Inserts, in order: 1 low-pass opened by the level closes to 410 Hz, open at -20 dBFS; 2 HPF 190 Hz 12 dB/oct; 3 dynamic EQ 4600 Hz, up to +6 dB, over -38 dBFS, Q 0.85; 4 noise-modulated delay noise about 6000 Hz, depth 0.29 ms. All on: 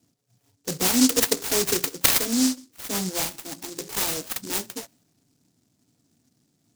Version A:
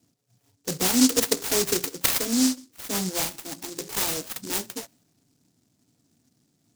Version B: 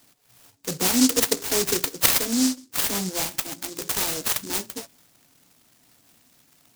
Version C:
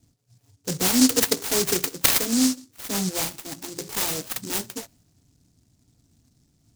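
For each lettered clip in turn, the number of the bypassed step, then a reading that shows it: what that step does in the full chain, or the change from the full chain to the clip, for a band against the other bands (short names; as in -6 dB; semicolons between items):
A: 3, crest factor change -2.5 dB; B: 1, momentary loudness spread change -3 LU; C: 2, 125 Hz band +2.5 dB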